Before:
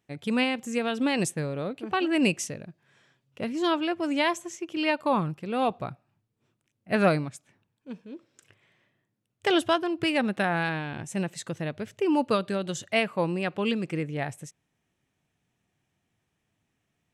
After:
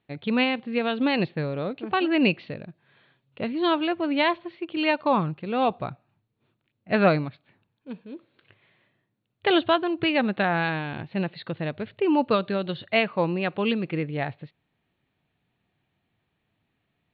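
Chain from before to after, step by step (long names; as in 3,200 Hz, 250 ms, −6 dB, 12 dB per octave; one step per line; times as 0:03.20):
Chebyshev low-pass filter 4,400 Hz, order 8
level +3 dB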